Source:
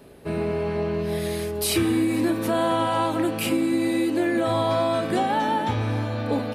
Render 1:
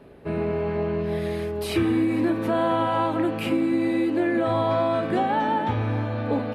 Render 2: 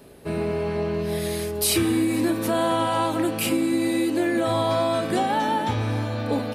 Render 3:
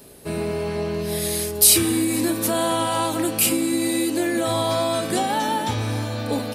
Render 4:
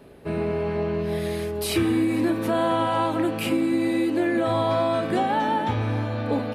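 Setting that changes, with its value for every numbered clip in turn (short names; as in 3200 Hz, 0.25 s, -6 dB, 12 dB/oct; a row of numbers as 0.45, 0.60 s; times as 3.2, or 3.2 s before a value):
tone controls, treble: -15, +4, +15, -6 dB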